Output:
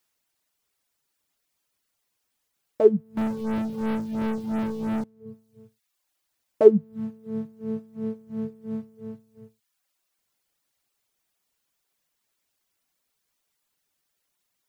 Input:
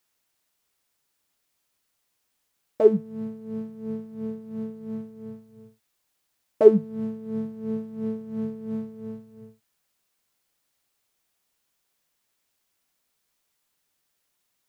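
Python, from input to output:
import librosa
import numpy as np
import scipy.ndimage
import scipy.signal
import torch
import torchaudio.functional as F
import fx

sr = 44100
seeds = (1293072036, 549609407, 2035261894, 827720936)

y = fx.leveller(x, sr, passes=5, at=(3.17, 5.04))
y = fx.dereverb_blind(y, sr, rt60_s=0.76)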